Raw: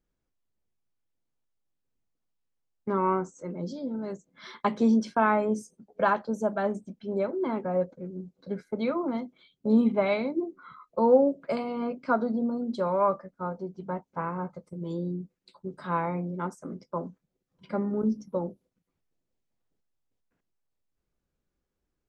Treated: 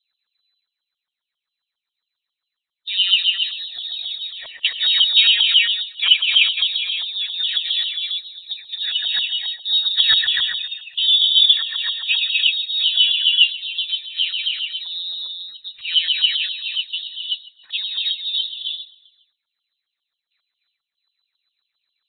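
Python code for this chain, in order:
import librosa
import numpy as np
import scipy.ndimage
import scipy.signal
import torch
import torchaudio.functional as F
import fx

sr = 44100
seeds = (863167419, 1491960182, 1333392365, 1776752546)

p1 = fx.spec_quant(x, sr, step_db=15)
p2 = p1 + fx.echo_feedback(p1, sr, ms=159, feedback_pct=48, wet_db=-21.5, dry=0)
p3 = fx.rev_gated(p2, sr, seeds[0], gate_ms=380, shape='rising', drr_db=-0.5)
p4 = fx.filter_lfo_lowpass(p3, sr, shape='saw_up', hz=7.4, low_hz=720.0, high_hz=3000.0, q=7.7)
p5 = fx.freq_invert(p4, sr, carrier_hz=4000)
y = p5 * librosa.db_to_amplitude(1.5)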